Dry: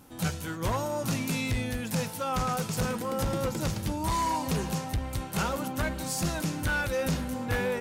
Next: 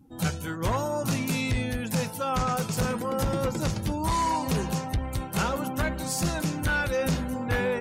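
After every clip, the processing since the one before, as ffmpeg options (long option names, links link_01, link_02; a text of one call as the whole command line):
ffmpeg -i in.wav -af "afftdn=noise_reduction=21:noise_floor=-48,volume=2.5dB" out.wav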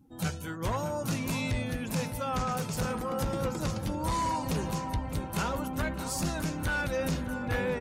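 ffmpeg -i in.wav -filter_complex "[0:a]asplit=2[link_01][link_02];[link_02]adelay=609,lowpass=frequency=1900:poles=1,volume=-9dB,asplit=2[link_03][link_04];[link_04]adelay=609,lowpass=frequency=1900:poles=1,volume=0.55,asplit=2[link_05][link_06];[link_06]adelay=609,lowpass=frequency=1900:poles=1,volume=0.55,asplit=2[link_07][link_08];[link_08]adelay=609,lowpass=frequency=1900:poles=1,volume=0.55,asplit=2[link_09][link_10];[link_10]adelay=609,lowpass=frequency=1900:poles=1,volume=0.55,asplit=2[link_11][link_12];[link_12]adelay=609,lowpass=frequency=1900:poles=1,volume=0.55[link_13];[link_01][link_03][link_05][link_07][link_09][link_11][link_13]amix=inputs=7:normalize=0,volume=-4.5dB" out.wav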